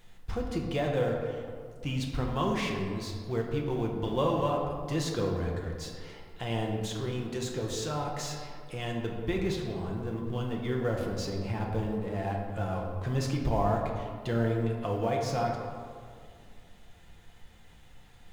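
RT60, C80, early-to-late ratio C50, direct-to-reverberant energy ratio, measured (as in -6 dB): 2.2 s, 4.5 dB, 3.0 dB, -0.5 dB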